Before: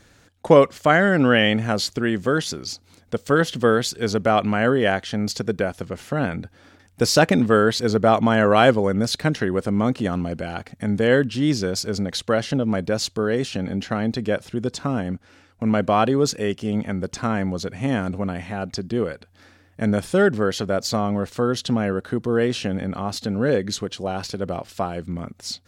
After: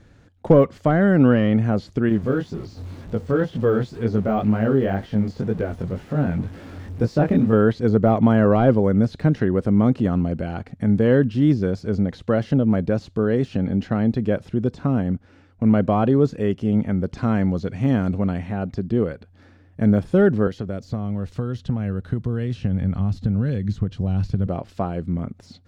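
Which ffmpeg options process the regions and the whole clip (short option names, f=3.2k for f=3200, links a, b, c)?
-filter_complex "[0:a]asettb=1/sr,asplit=3[a][b][c];[a]atrim=end=2.094[d];[b]atrim=start=2.09:end=7.53,asetpts=PTS-STARTPTS,afade=t=in:d=0.004:c=qsin,afade=t=out:st=5.436:d=0.004:c=qsin,aeval=exprs='val(0)+0.5*0.0299*sgn(val(0))':c=same,flanger=delay=17.5:depth=5.6:speed=2[e];[c]atrim=start=7.526[f];[d][e]acrossfade=d=0.004:c1=hsin:c2=qsin[g];[g][f]acrossfade=d=0.004:c1=qsin:c2=hsin,asettb=1/sr,asplit=3[h][i][j];[h]atrim=end=17.074[k];[i]atrim=start=17.07:end=18.39,asetpts=PTS-STARTPTS,afade=t=in:d=0.004:c=qsin,afade=t=out:st=1.316:d=0.004:c=qsin,lowpass=5.8k,aemphasis=mode=production:type=75kf[l];[j]atrim=start=18.386[m];[k][l]acrossfade=d=0.004:c1=hsin:c2=qsin[n];[n][m]acrossfade=d=0.004:c1=qsin:c2=hsin,asettb=1/sr,asplit=3[o][p][q];[o]atrim=end=20.474[r];[p]atrim=start=20.47:end=24.47,asetpts=PTS-STARTPTS,afade=t=in:d=0.004:c=qsin,afade=t=out:st=3.996:d=0.004:c=qsin,acrossover=split=440|2200[s][t][u];[s]acompressor=threshold=-30dB:ratio=4[v];[t]acompressor=threshold=-37dB:ratio=4[w];[u]acompressor=threshold=-38dB:ratio=4[x];[v][w][x]amix=inputs=3:normalize=0,asubboost=boost=7:cutoff=150[y];[q]atrim=start=24.466[z];[r][y]acrossfade=d=0.004:c1=hsin:c2=qsin[aa];[aa][z]acrossfade=d=0.004:c1=qsin:c2=hsin,deesser=0.9,lowpass=f=2.8k:p=1,lowshelf=f=390:g=10,volume=-3.5dB"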